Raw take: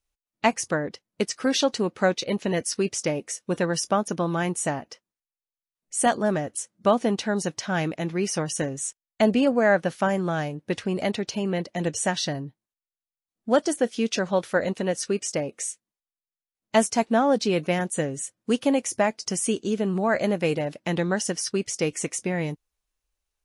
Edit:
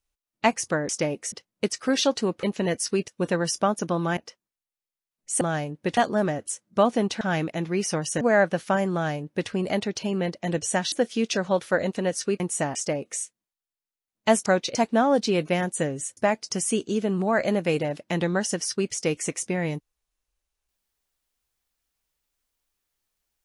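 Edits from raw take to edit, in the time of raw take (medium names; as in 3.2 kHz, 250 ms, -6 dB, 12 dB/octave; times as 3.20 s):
2.00–2.29 s: move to 16.93 s
2.94–3.37 s: move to 0.89 s
4.46–4.81 s: move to 15.22 s
7.29–7.65 s: delete
8.65–9.53 s: delete
10.25–10.81 s: copy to 6.05 s
12.24–13.74 s: delete
18.35–18.93 s: delete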